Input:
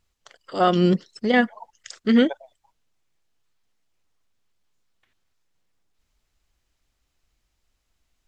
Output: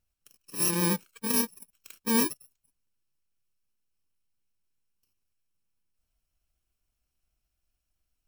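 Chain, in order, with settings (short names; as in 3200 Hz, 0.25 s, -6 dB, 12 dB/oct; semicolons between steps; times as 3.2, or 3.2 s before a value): FFT order left unsorted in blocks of 64 samples; vibrato 7.8 Hz 34 cents; gain -7.5 dB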